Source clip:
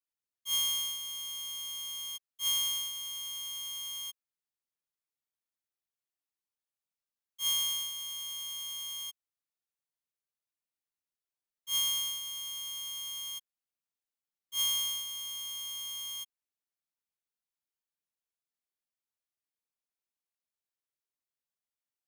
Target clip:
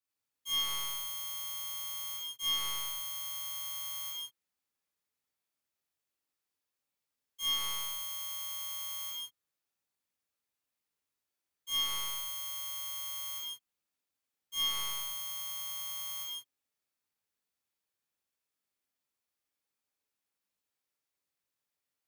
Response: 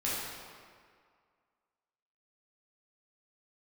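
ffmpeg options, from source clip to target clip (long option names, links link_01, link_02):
-filter_complex "[0:a]highpass=48,acrossover=split=170|2100[link_01][link_02][link_03];[link_03]asoftclip=type=hard:threshold=-30.5dB[link_04];[link_01][link_02][link_04]amix=inputs=3:normalize=0[link_05];[1:a]atrim=start_sample=2205,afade=type=out:start_time=0.24:duration=0.01,atrim=end_sample=11025[link_06];[link_05][link_06]afir=irnorm=-1:irlink=0"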